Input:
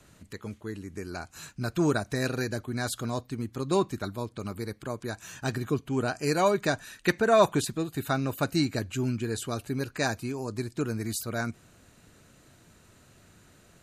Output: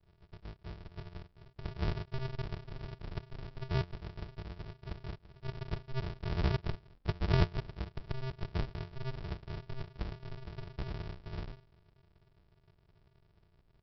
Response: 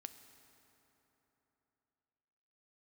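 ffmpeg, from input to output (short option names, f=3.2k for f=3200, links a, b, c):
-af "bandreject=f=60:t=h:w=6,bandreject=f=120:t=h:w=6,bandreject=f=180:t=h:w=6,bandreject=f=240:t=h:w=6,aresample=11025,acrusher=samples=42:mix=1:aa=0.000001,aresample=44100,volume=-8dB"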